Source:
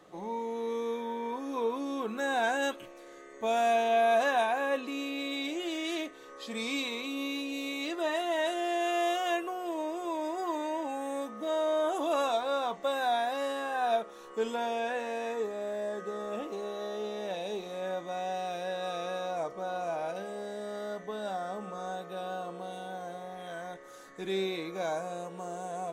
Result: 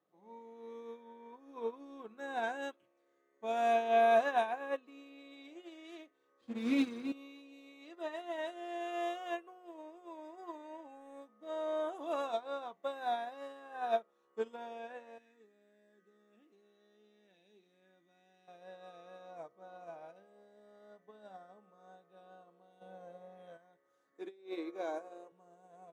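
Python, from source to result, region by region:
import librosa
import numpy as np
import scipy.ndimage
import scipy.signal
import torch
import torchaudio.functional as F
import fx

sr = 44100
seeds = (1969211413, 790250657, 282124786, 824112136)

y = fx.chain(x, sr, fx.lower_of_two(delay_ms=8.4),
    fx.peak_eq(hz=270.0, db=14.0, octaves=0.93),
    fx.resample_linear(factor=3), at=(6.41, 7.12))
y = fx.chain(y, sr, fx.highpass(hz=170.0, slope=12),
    fx.band_shelf(hz=750.0, db=-12.5, octaves=1.7), at=(15.18, 18.48))
y = fx.chain(y, sr, fx.bass_treble(bass_db=-5, treble_db=1),
    fx.small_body(hz=(200.0, 520.0, 2600.0), ring_ms=35, db=10),
    fx.env_flatten(amount_pct=50), at=(22.81, 23.57))
y = fx.chain(y, sr, fx.low_shelf_res(hz=220.0, db=-11.5, q=3.0),
    fx.over_compress(threshold_db=-30.0, ratio=-0.5), at=(24.13, 25.32))
y = scipy.signal.sosfilt(scipy.signal.butter(2, 100.0, 'highpass', fs=sr, output='sos'), y)
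y = fx.high_shelf(y, sr, hz=4000.0, db=-9.0)
y = fx.upward_expand(y, sr, threshold_db=-40.0, expansion=2.5)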